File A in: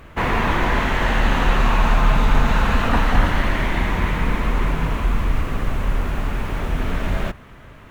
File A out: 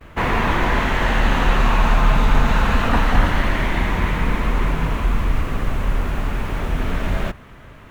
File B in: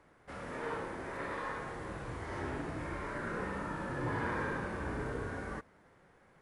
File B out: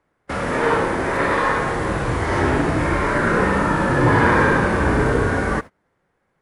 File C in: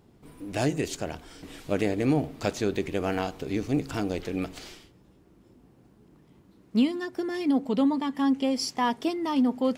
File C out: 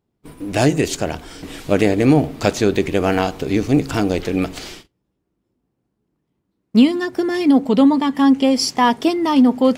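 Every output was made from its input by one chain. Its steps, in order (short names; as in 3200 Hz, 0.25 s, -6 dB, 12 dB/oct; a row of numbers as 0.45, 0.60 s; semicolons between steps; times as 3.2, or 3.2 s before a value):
gate -49 dBFS, range -26 dB; normalise peaks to -3 dBFS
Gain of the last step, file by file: +0.5, +20.5, +11.0 dB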